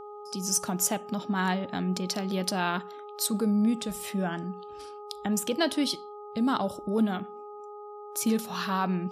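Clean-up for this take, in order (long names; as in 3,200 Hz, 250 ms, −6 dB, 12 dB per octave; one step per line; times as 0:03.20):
hum removal 415.2 Hz, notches 3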